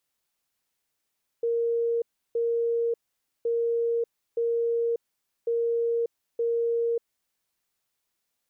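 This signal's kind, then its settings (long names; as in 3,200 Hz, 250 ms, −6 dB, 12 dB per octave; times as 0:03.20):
beeps in groups sine 466 Hz, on 0.59 s, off 0.33 s, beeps 2, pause 0.51 s, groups 3, −22.5 dBFS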